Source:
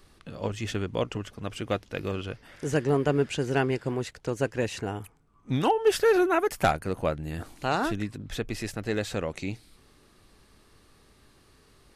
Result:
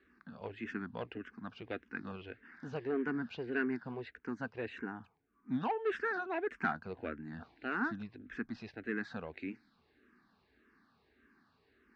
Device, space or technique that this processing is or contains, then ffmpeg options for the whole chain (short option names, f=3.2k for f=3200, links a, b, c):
barber-pole phaser into a guitar amplifier: -filter_complex "[0:a]asplit=2[a][b];[b]afreqshift=-1.7[c];[a][c]amix=inputs=2:normalize=1,asoftclip=type=tanh:threshold=-19dB,highpass=96,equalizer=f=100:t=q:w=4:g=-7,equalizer=f=140:t=q:w=4:g=-8,equalizer=f=240:t=q:w=4:g=8,equalizer=f=560:t=q:w=4:g=-8,equalizer=f=1.6k:t=q:w=4:g=9,equalizer=f=3.2k:t=q:w=4:g=-8,lowpass=f=3.8k:w=0.5412,lowpass=f=3.8k:w=1.3066,volume=-7dB"